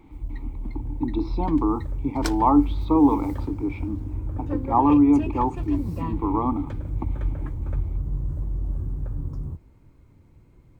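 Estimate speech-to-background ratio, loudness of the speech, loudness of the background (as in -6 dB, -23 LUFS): 8.5 dB, -23.0 LUFS, -31.5 LUFS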